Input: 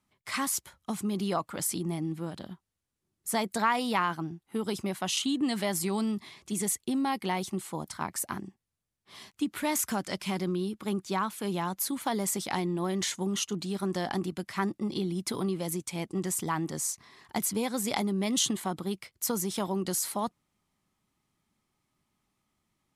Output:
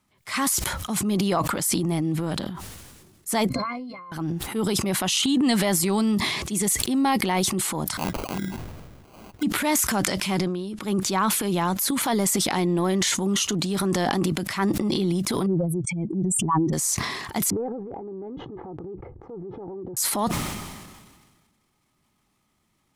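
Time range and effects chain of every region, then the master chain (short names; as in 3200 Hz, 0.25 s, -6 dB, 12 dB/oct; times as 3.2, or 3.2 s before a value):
3.49–4.12 compressor 4:1, threshold -39 dBFS + octave resonator C, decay 0.13 s
7.97–9.43 LPF 2600 Hz 24 dB/oct + sample-rate reducer 1800 Hz
10.38–10.81 LPF 11000 Hz 24 dB/oct + compressor 10:1, threshold -36 dBFS
15.46–16.73 spectral contrast raised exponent 3.1 + bell 1600 Hz +6 dB 1.4 oct
17.5–19.97 Bessel low-pass 520 Hz, order 4 + comb 2.4 ms, depth 73% + compressor 8:1, threshold -40 dBFS
whole clip: transient shaper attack -5 dB, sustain +9 dB; maximiser +18.5 dB; sustainer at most 36 dB/s; gain -11 dB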